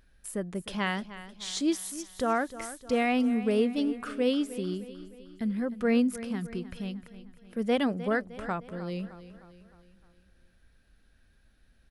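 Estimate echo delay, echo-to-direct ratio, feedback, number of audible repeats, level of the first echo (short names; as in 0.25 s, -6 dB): 0.307 s, -13.0 dB, 51%, 4, -14.5 dB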